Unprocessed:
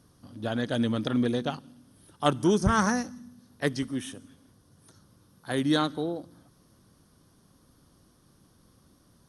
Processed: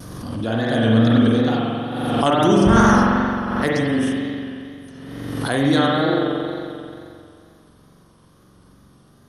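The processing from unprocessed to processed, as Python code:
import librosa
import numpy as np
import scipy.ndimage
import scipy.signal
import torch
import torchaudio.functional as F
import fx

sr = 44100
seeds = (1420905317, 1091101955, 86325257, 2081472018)

y = fx.rev_spring(x, sr, rt60_s=2.5, pass_ms=(44,), chirp_ms=60, drr_db=-6.0)
y = fx.wow_flutter(y, sr, seeds[0], rate_hz=2.1, depth_cents=56.0)
y = fx.pre_swell(y, sr, db_per_s=32.0)
y = F.gain(torch.from_numpy(y), 3.0).numpy()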